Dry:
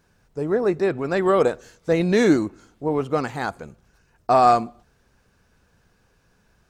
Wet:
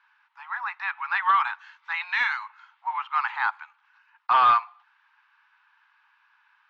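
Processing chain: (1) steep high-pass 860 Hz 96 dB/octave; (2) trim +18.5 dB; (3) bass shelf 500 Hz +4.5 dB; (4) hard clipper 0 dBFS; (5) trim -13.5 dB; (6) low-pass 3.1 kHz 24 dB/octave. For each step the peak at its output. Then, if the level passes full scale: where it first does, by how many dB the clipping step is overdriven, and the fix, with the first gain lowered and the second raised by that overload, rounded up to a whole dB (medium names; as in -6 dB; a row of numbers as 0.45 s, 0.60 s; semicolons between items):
-11.5 dBFS, +7.0 dBFS, +8.0 dBFS, 0.0 dBFS, -13.5 dBFS, -12.0 dBFS; step 2, 8.0 dB; step 2 +10.5 dB, step 5 -5.5 dB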